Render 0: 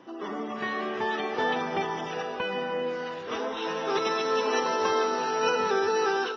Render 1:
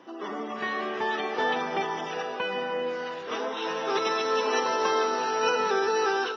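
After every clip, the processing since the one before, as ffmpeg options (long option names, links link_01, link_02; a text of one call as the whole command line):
ffmpeg -i in.wav -af "highpass=frequency=270:poles=1,acontrast=32,volume=-4dB" out.wav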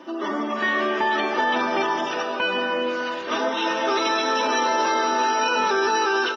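ffmpeg -i in.wav -af "aecho=1:1:3.3:0.69,alimiter=limit=-20dB:level=0:latency=1:release=16,volume=6.5dB" out.wav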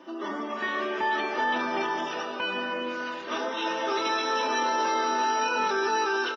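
ffmpeg -i in.wav -filter_complex "[0:a]asplit=2[link_01][link_02];[link_02]adelay=25,volume=-8.5dB[link_03];[link_01][link_03]amix=inputs=2:normalize=0,volume=-6.5dB" out.wav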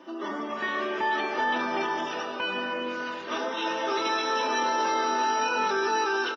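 ffmpeg -i in.wav -filter_complex "[0:a]asplit=4[link_01][link_02][link_03][link_04];[link_02]adelay=97,afreqshift=-46,volume=-21dB[link_05];[link_03]adelay=194,afreqshift=-92,volume=-27.4dB[link_06];[link_04]adelay=291,afreqshift=-138,volume=-33.8dB[link_07];[link_01][link_05][link_06][link_07]amix=inputs=4:normalize=0" out.wav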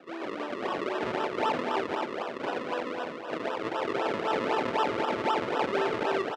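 ffmpeg -i in.wav -af "acrusher=samples=39:mix=1:aa=0.000001:lfo=1:lforange=39:lforate=3.9,highpass=370,lowpass=2700,volume=1.5dB" out.wav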